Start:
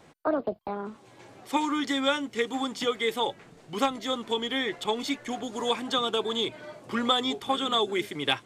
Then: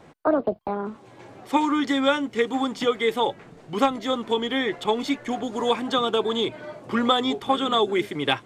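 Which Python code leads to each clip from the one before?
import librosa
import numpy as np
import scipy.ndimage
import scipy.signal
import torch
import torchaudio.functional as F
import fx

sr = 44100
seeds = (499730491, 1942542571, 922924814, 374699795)

y = fx.high_shelf(x, sr, hz=2700.0, db=-8.5)
y = y * 10.0 ** (6.0 / 20.0)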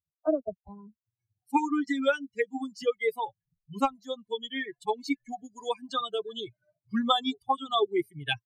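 y = fx.bin_expand(x, sr, power=3.0)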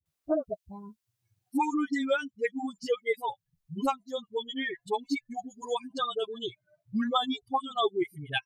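y = fx.dispersion(x, sr, late='highs', ms=58.0, hz=420.0)
y = fx.band_squash(y, sr, depth_pct=40)
y = y * 10.0 ** (-1.0 / 20.0)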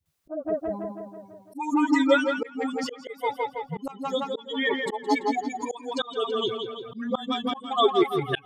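y = fx.echo_tape(x, sr, ms=166, feedback_pct=63, wet_db=-5, lp_hz=4600.0, drive_db=19.0, wow_cents=34)
y = fx.spec_box(y, sr, start_s=4.65, length_s=0.69, low_hz=410.0, high_hz=1300.0, gain_db=8)
y = fx.auto_swell(y, sr, attack_ms=304.0)
y = y * 10.0 ** (7.0 / 20.0)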